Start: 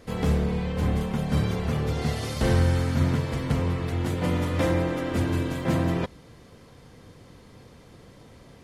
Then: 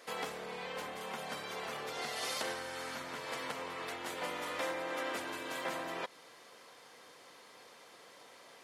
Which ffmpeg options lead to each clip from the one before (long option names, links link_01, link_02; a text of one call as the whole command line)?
ffmpeg -i in.wav -af "acompressor=threshold=-27dB:ratio=6,highpass=700,volume=1dB" out.wav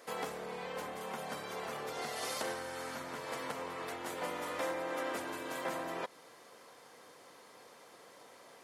ffmpeg -i in.wav -af "equalizer=frequency=3200:width=0.62:gain=-6,volume=2dB" out.wav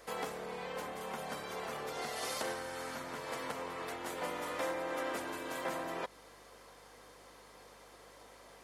ffmpeg -i in.wav -af "aeval=exprs='val(0)+0.000398*(sin(2*PI*50*n/s)+sin(2*PI*2*50*n/s)/2+sin(2*PI*3*50*n/s)/3+sin(2*PI*4*50*n/s)/4+sin(2*PI*5*50*n/s)/5)':channel_layout=same" out.wav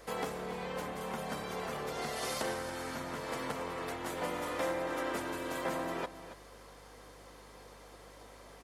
ffmpeg -i in.wav -af "lowshelf=frequency=280:gain=7.5,aecho=1:1:278:0.224,volume=1dB" out.wav